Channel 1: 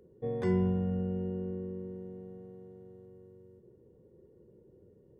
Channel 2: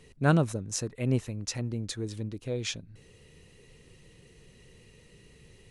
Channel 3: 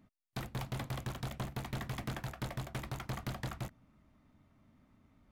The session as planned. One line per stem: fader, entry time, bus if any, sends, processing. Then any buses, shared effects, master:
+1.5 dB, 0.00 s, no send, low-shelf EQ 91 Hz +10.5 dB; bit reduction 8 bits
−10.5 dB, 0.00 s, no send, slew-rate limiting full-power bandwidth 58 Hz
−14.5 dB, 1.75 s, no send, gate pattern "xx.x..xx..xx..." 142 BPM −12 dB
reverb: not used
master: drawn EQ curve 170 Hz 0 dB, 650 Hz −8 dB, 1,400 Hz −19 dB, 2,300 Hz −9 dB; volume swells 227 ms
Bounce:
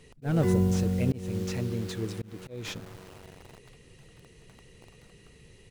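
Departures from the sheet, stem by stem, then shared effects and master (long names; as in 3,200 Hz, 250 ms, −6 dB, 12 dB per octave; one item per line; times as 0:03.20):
stem 2 −10.5 dB → +1.0 dB
stem 3 −14.5 dB → −21.0 dB
master: missing drawn EQ curve 170 Hz 0 dB, 650 Hz −8 dB, 1,400 Hz −19 dB, 2,300 Hz −9 dB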